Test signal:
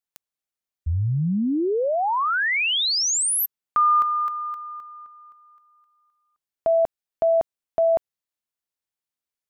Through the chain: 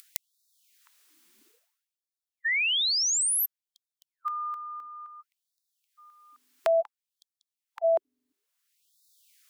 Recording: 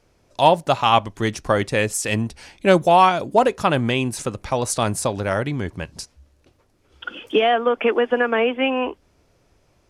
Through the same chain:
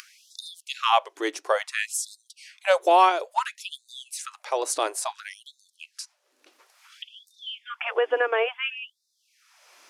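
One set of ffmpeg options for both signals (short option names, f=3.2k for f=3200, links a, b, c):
-filter_complex "[0:a]acrossover=split=480|900[a][b][c];[c]acompressor=mode=upward:threshold=-35dB:ratio=2.5:attack=35:release=693:knee=2.83:detection=peak[d];[a][b][d]amix=inputs=3:normalize=0,aeval=exprs='val(0)+0.0282*(sin(2*PI*50*n/s)+sin(2*PI*2*50*n/s)/2+sin(2*PI*3*50*n/s)/3+sin(2*PI*4*50*n/s)/4+sin(2*PI*5*50*n/s)/5)':c=same,afftfilt=real='re*gte(b*sr/1024,260*pow(3600/260,0.5+0.5*sin(2*PI*0.58*pts/sr)))':imag='im*gte(b*sr/1024,260*pow(3600/260,0.5+0.5*sin(2*PI*0.58*pts/sr)))':win_size=1024:overlap=0.75,volume=-3.5dB"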